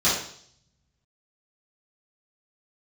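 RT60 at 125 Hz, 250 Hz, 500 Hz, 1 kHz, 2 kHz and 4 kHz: 1.6 s, 0.65 s, 0.60 s, 0.55 s, 0.55 s, 0.70 s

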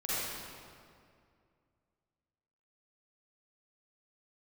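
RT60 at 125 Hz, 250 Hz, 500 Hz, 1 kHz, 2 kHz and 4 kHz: 2.7 s, 2.6 s, 2.4 s, 2.2 s, 1.9 s, 1.5 s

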